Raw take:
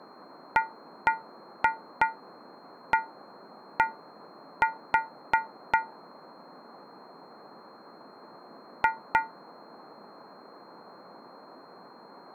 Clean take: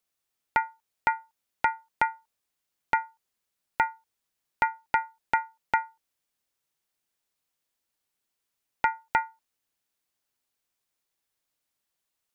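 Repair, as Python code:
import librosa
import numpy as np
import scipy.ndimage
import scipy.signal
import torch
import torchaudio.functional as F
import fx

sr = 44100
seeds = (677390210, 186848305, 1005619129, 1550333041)

y = fx.notch(x, sr, hz=4200.0, q=30.0)
y = fx.noise_reduce(y, sr, print_start_s=7.69, print_end_s=8.19, reduce_db=30.0)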